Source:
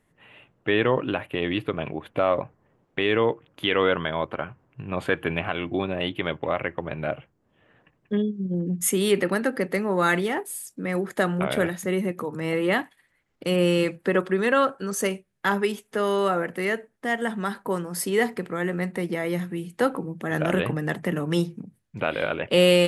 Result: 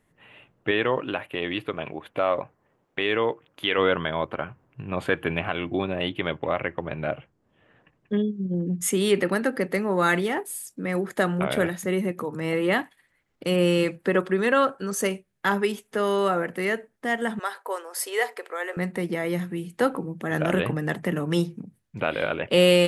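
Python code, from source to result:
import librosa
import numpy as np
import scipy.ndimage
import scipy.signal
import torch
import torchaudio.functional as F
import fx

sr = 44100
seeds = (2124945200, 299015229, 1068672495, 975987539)

y = fx.low_shelf(x, sr, hz=300.0, db=-8.0, at=(0.71, 3.78))
y = fx.lowpass(y, sr, hz=10000.0, slope=12, at=(6.13, 9.2))
y = fx.cheby2_highpass(y, sr, hz=180.0, order=4, stop_db=50, at=(17.39, 18.77))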